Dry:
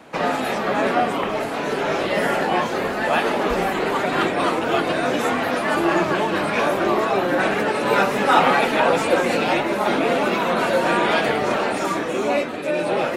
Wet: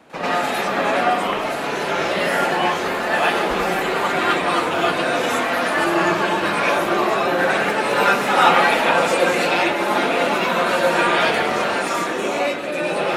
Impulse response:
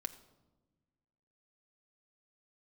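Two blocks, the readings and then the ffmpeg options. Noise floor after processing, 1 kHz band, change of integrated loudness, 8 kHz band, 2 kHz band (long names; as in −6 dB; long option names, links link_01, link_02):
−24 dBFS, +2.0 dB, +1.5 dB, +4.0 dB, +3.5 dB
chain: -filter_complex "[0:a]asplit=2[link_01][link_02];[link_02]lowshelf=frequency=490:gain=-11[link_03];[1:a]atrim=start_sample=2205,asetrate=29106,aresample=44100,adelay=97[link_04];[link_03][link_04]afir=irnorm=-1:irlink=0,volume=8dB[link_05];[link_01][link_05]amix=inputs=2:normalize=0,volume=-5dB"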